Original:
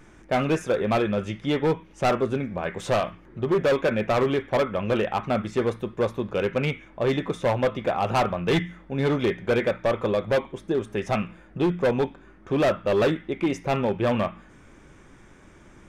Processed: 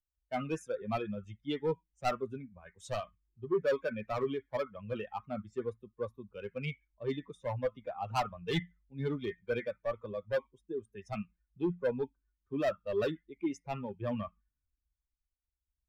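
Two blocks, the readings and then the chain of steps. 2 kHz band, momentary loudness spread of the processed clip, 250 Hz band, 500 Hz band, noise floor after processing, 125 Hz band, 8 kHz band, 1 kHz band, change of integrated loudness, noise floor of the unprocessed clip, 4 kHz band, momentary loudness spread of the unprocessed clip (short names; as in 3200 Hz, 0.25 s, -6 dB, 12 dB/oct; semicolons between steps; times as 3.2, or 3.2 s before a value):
-13.0 dB, 8 LU, -12.5 dB, -11.5 dB, under -85 dBFS, -12.5 dB, n/a, -12.0 dB, -12.0 dB, -51 dBFS, -12.0 dB, 5 LU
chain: per-bin expansion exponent 2; three-band expander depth 40%; gain -7 dB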